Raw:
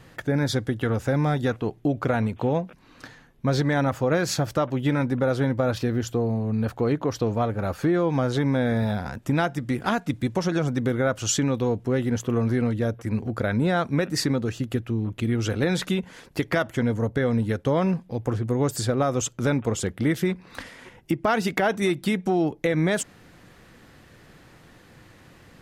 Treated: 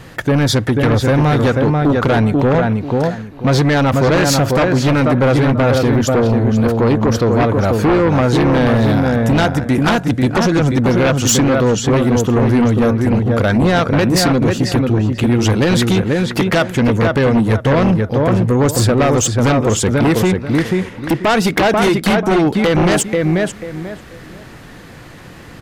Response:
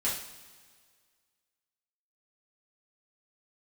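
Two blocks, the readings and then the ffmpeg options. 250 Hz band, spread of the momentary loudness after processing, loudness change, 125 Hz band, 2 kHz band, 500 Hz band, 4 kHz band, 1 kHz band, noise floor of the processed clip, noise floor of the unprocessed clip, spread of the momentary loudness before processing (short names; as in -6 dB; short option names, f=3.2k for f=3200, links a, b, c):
+11.0 dB, 3 LU, +11.0 dB, +11.5 dB, +11.0 dB, +11.0 dB, +12.0 dB, +11.5 dB, -36 dBFS, -52 dBFS, 5 LU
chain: -filter_complex "[0:a]asplit=2[a][b];[b]adelay=489,lowpass=f=2.5k:p=1,volume=-4dB,asplit=2[c][d];[d]adelay=489,lowpass=f=2.5k:p=1,volume=0.23,asplit=2[e][f];[f]adelay=489,lowpass=f=2.5k:p=1,volume=0.23[g];[a][c][e][g]amix=inputs=4:normalize=0,aeval=exprs='0.376*sin(PI/2*2.82*val(0)/0.376)':c=same"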